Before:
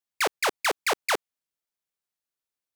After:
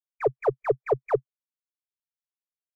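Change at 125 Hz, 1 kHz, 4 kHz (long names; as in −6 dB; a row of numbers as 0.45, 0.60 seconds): can't be measured, −3.5 dB, below −30 dB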